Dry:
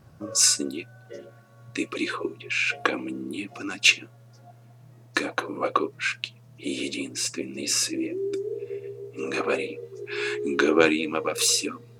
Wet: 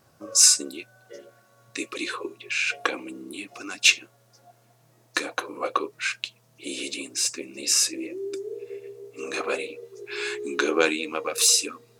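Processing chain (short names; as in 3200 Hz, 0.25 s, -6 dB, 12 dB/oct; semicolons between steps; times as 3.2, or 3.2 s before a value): tone controls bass -12 dB, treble +6 dB; gain -1.5 dB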